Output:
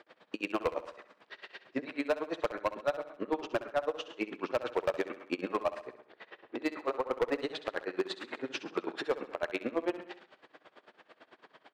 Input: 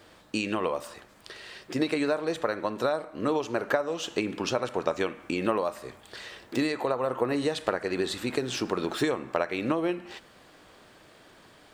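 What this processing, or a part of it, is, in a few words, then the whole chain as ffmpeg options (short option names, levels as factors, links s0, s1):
helicopter radio: -filter_complex "[0:a]highpass=320,lowpass=2900,aeval=exprs='val(0)*pow(10,-38*(0.5-0.5*cos(2*PI*9*n/s))/20)':c=same,asoftclip=type=hard:threshold=0.0473,asettb=1/sr,asplit=3[s0][s1][s2];[s0]atrim=end=5.854[s3];[s1]atrim=start=5.85:end=6.6,asetpts=PTS-STARTPTS,afade=t=in:d=0.004:c=qsin,afade=t=out:st=0.746:d=0.004:c=qsin,lowpass=f=1400:p=1[s4];[s2]atrim=start=6.596[s5];[s3][s4]acrossfade=d=0.004:c1=hsin:c2=qsin[s6];[s6][s5]acrossfade=d=0.004:c1=qsin:c2=hsin,aecho=1:1:66|132|198|264|330:0.2|0.108|0.0582|0.0314|0.017,volume=1.58"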